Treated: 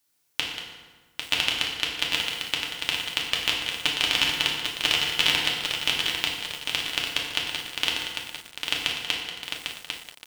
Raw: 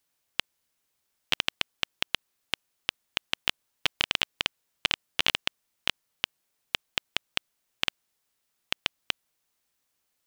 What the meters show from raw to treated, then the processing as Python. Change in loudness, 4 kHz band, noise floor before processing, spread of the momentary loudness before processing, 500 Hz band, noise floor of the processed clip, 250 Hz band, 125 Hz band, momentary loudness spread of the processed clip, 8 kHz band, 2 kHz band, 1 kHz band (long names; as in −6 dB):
+6.0 dB, +6.5 dB, −78 dBFS, 8 LU, +5.0 dB, −61 dBFS, +7.0 dB, +6.0 dB, 12 LU, +9.5 dB, +6.0 dB, +5.0 dB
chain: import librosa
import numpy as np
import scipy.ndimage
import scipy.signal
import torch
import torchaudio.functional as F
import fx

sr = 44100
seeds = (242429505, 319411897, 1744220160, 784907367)

p1 = fx.high_shelf(x, sr, hz=3300.0, db=6.0)
p2 = p1 + fx.echo_single(p1, sr, ms=186, db=-10.5, dry=0)
p3 = fx.rev_fdn(p2, sr, rt60_s=1.4, lf_ratio=1.25, hf_ratio=0.7, size_ms=20.0, drr_db=-2.5)
p4 = fx.echo_crushed(p3, sr, ms=799, feedback_pct=55, bits=6, wet_db=-5.5)
y = F.gain(torch.from_numpy(p4), -1.5).numpy()